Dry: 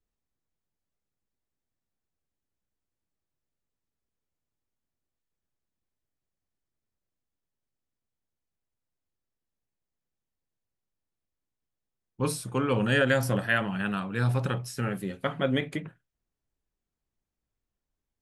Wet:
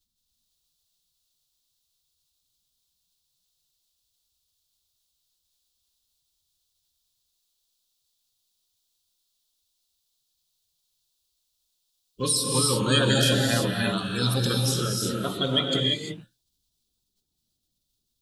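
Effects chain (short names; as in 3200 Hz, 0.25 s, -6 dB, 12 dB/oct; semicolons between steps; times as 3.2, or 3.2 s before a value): bin magnitudes rounded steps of 30 dB; resonant high shelf 2800 Hz +10.5 dB, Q 3; non-linear reverb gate 0.37 s rising, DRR -1 dB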